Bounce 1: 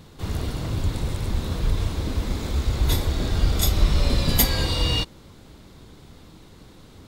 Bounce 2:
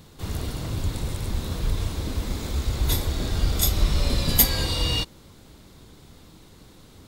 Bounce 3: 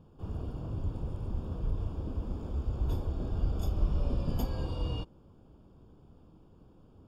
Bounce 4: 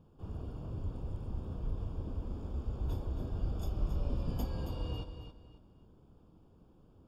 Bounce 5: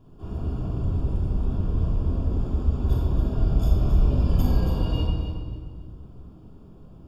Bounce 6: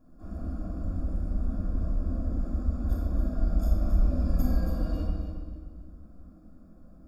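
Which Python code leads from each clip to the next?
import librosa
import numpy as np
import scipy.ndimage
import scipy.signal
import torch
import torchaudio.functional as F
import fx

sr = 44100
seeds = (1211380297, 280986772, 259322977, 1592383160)

y1 = fx.high_shelf(x, sr, hz=5900.0, db=7.0)
y1 = F.gain(torch.from_numpy(y1), -2.5).numpy()
y2 = scipy.signal.lfilter(np.full(22, 1.0 / 22), 1.0, y1)
y2 = F.gain(torch.from_numpy(y2), -7.0).numpy()
y3 = fx.echo_feedback(y2, sr, ms=274, feedback_pct=27, wet_db=-9.0)
y3 = F.gain(torch.from_numpy(y3), -4.5).numpy()
y4 = fx.room_shoebox(y3, sr, seeds[0], volume_m3=1200.0, walls='mixed', distance_m=3.1)
y4 = F.gain(torch.from_numpy(y4), 5.0).numpy()
y5 = fx.fixed_phaser(y4, sr, hz=610.0, stages=8)
y5 = F.gain(torch.from_numpy(y5), -2.0).numpy()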